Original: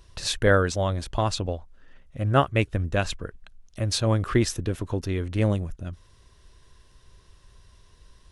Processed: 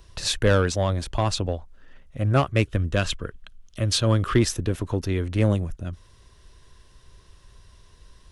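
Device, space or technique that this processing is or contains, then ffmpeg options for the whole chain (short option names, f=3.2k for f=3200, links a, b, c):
one-band saturation: -filter_complex "[0:a]asettb=1/sr,asplit=3[a][b][c];[a]atrim=end=2.664[d];[b]atrim=start=2.66:end=4.39,asetpts=PTS-STARTPTS,afade=t=in:d=0.004:c=qsin,afade=t=out:st=1.726:d=0.004:c=qsin,equalizer=f=800:t=o:w=0.33:g=-6,equalizer=f=1.25k:t=o:w=0.33:g=3,equalizer=f=3.15k:t=o:w=0.33:g=7[e];[c]atrim=start=4.386[f];[d][e]acrossfade=d=0.004:c1=hsin:c2=qsin[g];[g][f]acrossfade=d=0.004:c1=qsin:c2=hsin,acrossover=split=290|4100[h][i][j];[i]asoftclip=type=tanh:threshold=-18dB[k];[h][k][j]amix=inputs=3:normalize=0,volume=2.5dB"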